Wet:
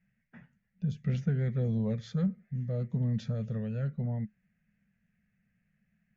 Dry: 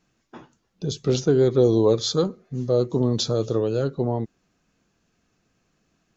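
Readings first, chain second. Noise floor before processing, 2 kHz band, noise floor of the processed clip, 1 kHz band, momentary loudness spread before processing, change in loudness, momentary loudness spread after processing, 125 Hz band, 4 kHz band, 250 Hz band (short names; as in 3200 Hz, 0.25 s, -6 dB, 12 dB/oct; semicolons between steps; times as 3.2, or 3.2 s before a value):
-71 dBFS, -7.5 dB, -78 dBFS, -19.0 dB, 12 LU, -10.5 dB, 6 LU, -3.5 dB, -24.0 dB, -9.0 dB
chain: EQ curve 100 Hz 0 dB, 210 Hz +7 dB, 310 Hz -25 dB, 570 Hz -9 dB, 1100 Hz -18 dB, 1900 Hz +7 dB, 4000 Hz -21 dB; gain -6 dB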